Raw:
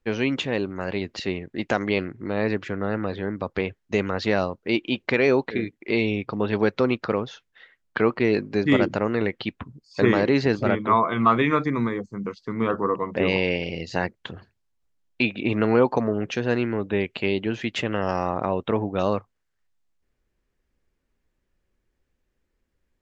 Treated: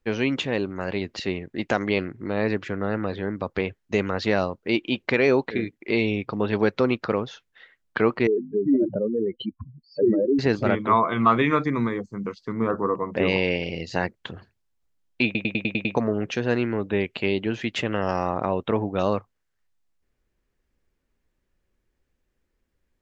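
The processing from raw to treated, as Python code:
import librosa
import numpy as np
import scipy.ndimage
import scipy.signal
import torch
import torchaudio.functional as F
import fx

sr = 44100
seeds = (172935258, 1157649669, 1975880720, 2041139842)

y = fx.spec_expand(x, sr, power=3.8, at=(8.27, 10.39))
y = fx.peak_eq(y, sr, hz=3100.0, db=-15.0, octaves=0.84, at=(12.52, 13.14))
y = fx.edit(y, sr, fx.stutter_over(start_s=15.25, slice_s=0.1, count=7), tone=tone)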